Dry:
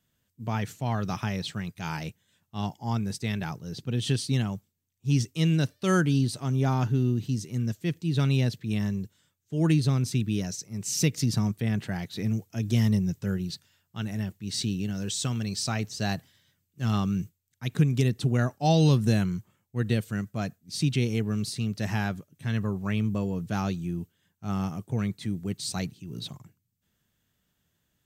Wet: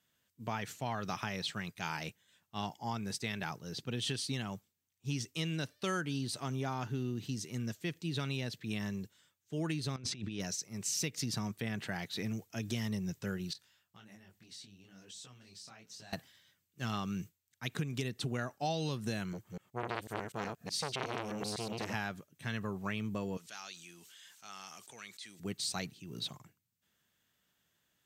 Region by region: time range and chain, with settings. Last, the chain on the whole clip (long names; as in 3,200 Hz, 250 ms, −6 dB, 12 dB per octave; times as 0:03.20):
0:09.96–0:10.40: low-pass filter 5,400 Hz + compressor whose output falls as the input rises −31 dBFS, ratio −0.5
0:13.53–0:16.13: downward compressor 12 to 1, threshold −42 dBFS + single-tap delay 897 ms −21.5 dB + micro pitch shift up and down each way 42 cents
0:19.33–0:21.94: delay that plays each chunk backwards 124 ms, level −2 dB + saturating transformer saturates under 1,600 Hz
0:23.37–0:25.40: low-pass filter 6,600 Hz + first difference + envelope flattener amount 70%
whole clip: low-pass filter 1,800 Hz 6 dB per octave; spectral tilt +3.5 dB per octave; downward compressor 4 to 1, threshold −34 dBFS; level +1 dB